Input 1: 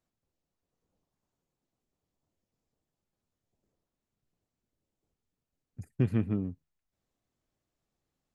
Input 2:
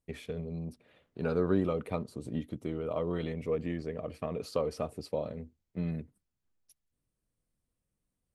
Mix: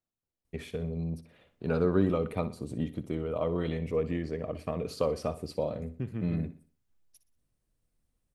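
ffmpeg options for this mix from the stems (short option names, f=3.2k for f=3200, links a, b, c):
-filter_complex "[0:a]volume=-8.5dB,asplit=2[a][b];[b]volume=-15.5dB[c];[1:a]lowshelf=f=66:g=7,adelay=450,volume=2dB,asplit=2[d][e];[e]volume=-14.5dB[f];[c][f]amix=inputs=2:normalize=0,aecho=0:1:61|122|183|244|305:1|0.38|0.144|0.0549|0.0209[g];[a][d][g]amix=inputs=3:normalize=0"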